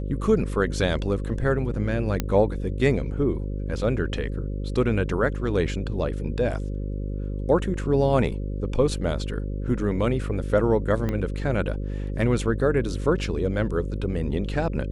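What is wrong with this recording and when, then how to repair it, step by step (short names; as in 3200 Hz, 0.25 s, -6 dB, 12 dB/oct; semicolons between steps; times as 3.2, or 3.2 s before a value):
buzz 50 Hz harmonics 11 -29 dBFS
2.2 pop -10 dBFS
11.09 pop -15 dBFS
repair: de-click; de-hum 50 Hz, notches 11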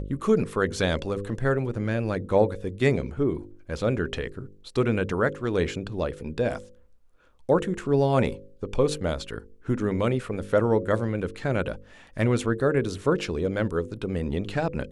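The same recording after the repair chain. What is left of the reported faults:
11.09 pop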